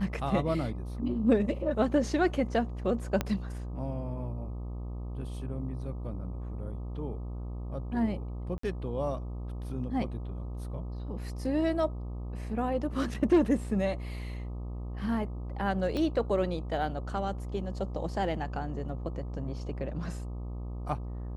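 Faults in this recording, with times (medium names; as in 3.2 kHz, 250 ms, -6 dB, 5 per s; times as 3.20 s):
buzz 60 Hz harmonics 21 -37 dBFS
3.21 s: pop -14 dBFS
8.58–8.63 s: dropout 54 ms
15.97 s: pop -21 dBFS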